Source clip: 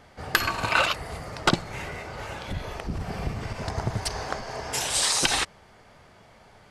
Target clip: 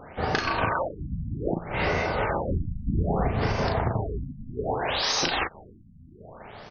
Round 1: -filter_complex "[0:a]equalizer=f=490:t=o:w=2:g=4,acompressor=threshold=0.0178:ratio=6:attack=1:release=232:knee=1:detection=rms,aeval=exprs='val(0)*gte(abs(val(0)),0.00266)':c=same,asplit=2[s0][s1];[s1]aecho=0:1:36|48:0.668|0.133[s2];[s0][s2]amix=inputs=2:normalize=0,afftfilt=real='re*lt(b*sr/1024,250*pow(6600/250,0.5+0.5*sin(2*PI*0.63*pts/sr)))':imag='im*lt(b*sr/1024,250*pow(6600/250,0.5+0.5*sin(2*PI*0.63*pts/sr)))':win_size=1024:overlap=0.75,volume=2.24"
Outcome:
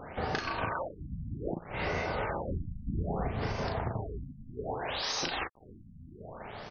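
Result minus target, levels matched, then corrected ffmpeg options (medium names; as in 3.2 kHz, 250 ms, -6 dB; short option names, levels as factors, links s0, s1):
compression: peak gain reduction +8 dB
-filter_complex "[0:a]equalizer=f=490:t=o:w=2:g=4,acompressor=threshold=0.0531:ratio=6:attack=1:release=232:knee=1:detection=rms,aeval=exprs='val(0)*gte(abs(val(0)),0.00266)':c=same,asplit=2[s0][s1];[s1]aecho=0:1:36|48:0.668|0.133[s2];[s0][s2]amix=inputs=2:normalize=0,afftfilt=real='re*lt(b*sr/1024,250*pow(6600/250,0.5+0.5*sin(2*PI*0.63*pts/sr)))':imag='im*lt(b*sr/1024,250*pow(6600/250,0.5+0.5*sin(2*PI*0.63*pts/sr)))':win_size=1024:overlap=0.75,volume=2.24"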